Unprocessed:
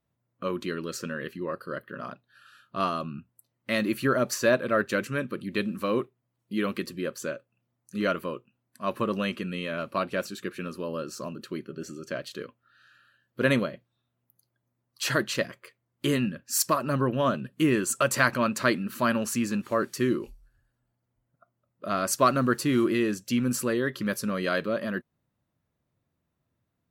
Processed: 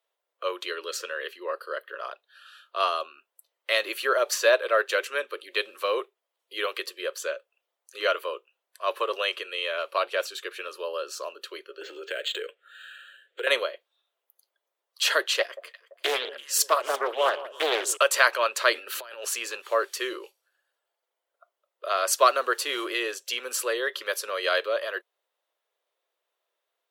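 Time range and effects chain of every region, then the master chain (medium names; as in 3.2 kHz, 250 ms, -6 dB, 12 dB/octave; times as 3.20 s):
11.81–13.47 s: FFT filter 130 Hz 0 dB, 460 Hz +13 dB, 1 kHz -9 dB, 1.5 kHz +11 dB, 3.7 kHz +12 dB, 5.3 kHz -8 dB + compression, threshold -29 dBFS + decimation joined by straight lines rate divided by 4×
15.40–17.97 s: band-stop 2.3 kHz, Q 25 + echo whose repeats swap between lows and highs 169 ms, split 1 kHz, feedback 58%, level -13.5 dB + loudspeaker Doppler distortion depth 0.53 ms
18.75–19.25 s: band-stop 1.1 kHz, Q 7.6 + compressor with a negative ratio -32 dBFS, ratio -0.5
whole clip: steep high-pass 420 Hz 48 dB/octave; peaking EQ 3.3 kHz +7.5 dB 0.63 oct; trim +2.5 dB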